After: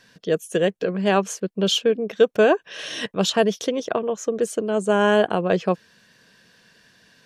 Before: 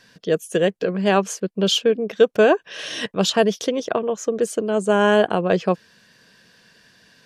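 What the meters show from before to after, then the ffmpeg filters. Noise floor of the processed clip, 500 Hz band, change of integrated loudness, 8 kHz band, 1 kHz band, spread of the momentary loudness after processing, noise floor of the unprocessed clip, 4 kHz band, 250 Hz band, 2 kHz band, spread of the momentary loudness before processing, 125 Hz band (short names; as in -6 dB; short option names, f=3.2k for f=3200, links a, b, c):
-59 dBFS, -1.5 dB, -1.5 dB, -1.5 dB, -1.5 dB, 8 LU, -57 dBFS, -1.5 dB, -1.5 dB, -1.5 dB, 8 LU, -1.5 dB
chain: -af "bandreject=f=4.8k:w=20,volume=-1.5dB"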